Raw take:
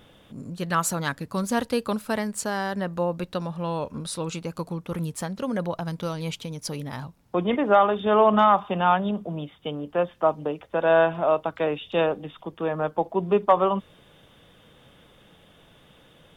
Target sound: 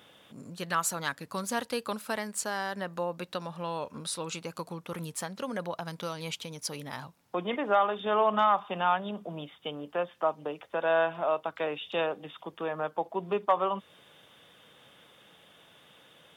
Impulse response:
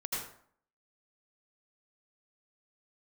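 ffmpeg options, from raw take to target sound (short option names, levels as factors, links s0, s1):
-filter_complex "[0:a]highpass=100,lowshelf=f=460:g=-10.5,asplit=2[s0][s1];[s1]acompressor=threshold=0.02:ratio=6,volume=0.891[s2];[s0][s2]amix=inputs=2:normalize=0,volume=0.562"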